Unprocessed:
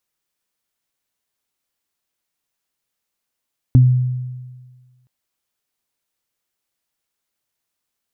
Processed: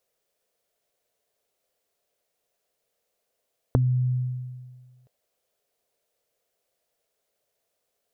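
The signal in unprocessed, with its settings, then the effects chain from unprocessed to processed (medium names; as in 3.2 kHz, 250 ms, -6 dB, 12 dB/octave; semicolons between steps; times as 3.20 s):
additive tone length 1.32 s, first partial 126 Hz, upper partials -7.5 dB, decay 1.53 s, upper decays 0.21 s, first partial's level -5 dB
high-order bell 540 Hz +13.5 dB 1 oct; compression 5:1, threshold -21 dBFS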